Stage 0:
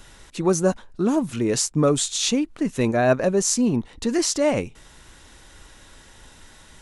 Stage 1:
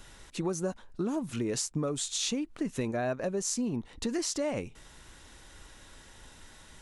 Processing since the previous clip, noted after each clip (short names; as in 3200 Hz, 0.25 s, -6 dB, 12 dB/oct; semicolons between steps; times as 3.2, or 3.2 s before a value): compressor 6:1, threshold -24 dBFS, peak gain reduction 11 dB; gain -4.5 dB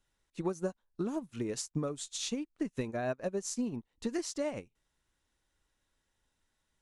upward expander 2.5:1, over -46 dBFS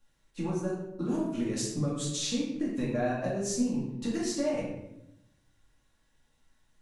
compressor, threshold -34 dBFS, peak gain reduction 7 dB; shoebox room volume 270 m³, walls mixed, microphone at 2.3 m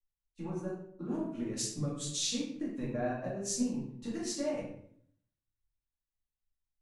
three-band expander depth 70%; gain -5.5 dB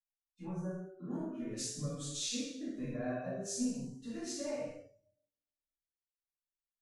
two-slope reverb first 0.68 s, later 1.8 s, from -26 dB, DRR -2 dB; spectral noise reduction 18 dB; gain -7.5 dB